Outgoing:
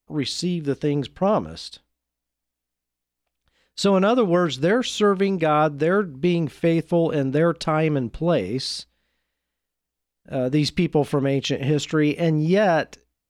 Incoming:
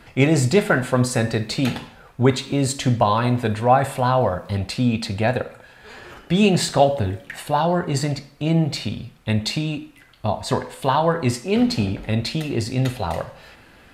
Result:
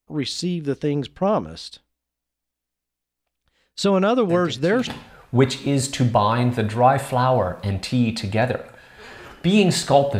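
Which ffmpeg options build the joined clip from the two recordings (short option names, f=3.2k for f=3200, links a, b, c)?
-filter_complex "[1:a]asplit=2[a][b];[0:a]apad=whole_dur=10.19,atrim=end=10.19,atrim=end=4.872[c];[b]atrim=start=1.728:end=7.05[d];[a]atrim=start=1.15:end=1.73,asetpts=PTS-STARTPTS,volume=-14dB,afade=t=in:d=0.004:c=hsin,afade=t=out:st=0.576:d=0.004:c=hsin,adelay=189189S[e];[c][d]acrossfade=d=0.004:c1=hsin:c2=hsin[f];[f][e]amix=inputs=2:normalize=0"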